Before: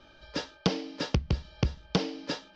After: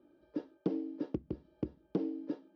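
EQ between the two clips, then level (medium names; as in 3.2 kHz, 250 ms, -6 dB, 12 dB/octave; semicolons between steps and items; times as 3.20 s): band-pass filter 320 Hz, Q 3.7; +2.5 dB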